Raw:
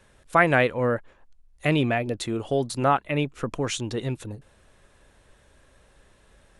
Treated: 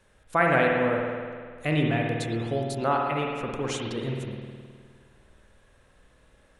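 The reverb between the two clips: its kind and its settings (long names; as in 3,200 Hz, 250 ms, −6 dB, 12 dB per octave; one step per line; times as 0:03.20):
spring reverb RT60 1.9 s, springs 52 ms, chirp 70 ms, DRR −0.5 dB
level −5 dB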